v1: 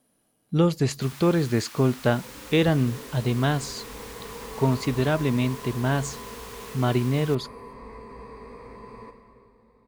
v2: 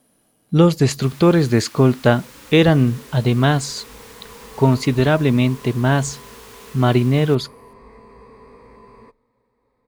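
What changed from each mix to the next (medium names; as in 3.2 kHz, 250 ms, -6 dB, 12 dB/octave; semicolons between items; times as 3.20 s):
speech +7.5 dB; reverb: off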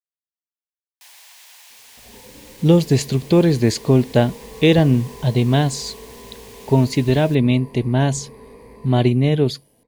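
speech: entry +2.10 s; second sound +3.5 dB; master: add peaking EQ 1.3 kHz -14.5 dB 0.52 oct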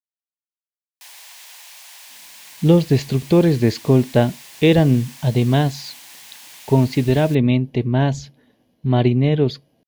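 speech: add boxcar filter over 5 samples; first sound +4.0 dB; second sound: muted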